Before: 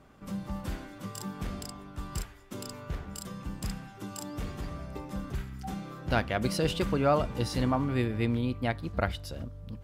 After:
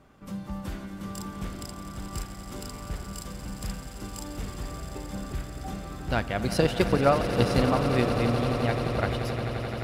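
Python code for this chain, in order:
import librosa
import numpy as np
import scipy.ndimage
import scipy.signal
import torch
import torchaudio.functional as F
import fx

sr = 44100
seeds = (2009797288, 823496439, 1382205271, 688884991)

y = fx.transient(x, sr, attack_db=11, sustain_db=-4, at=(6.5, 8.06))
y = fx.echo_swell(y, sr, ms=87, loudest=8, wet_db=-13)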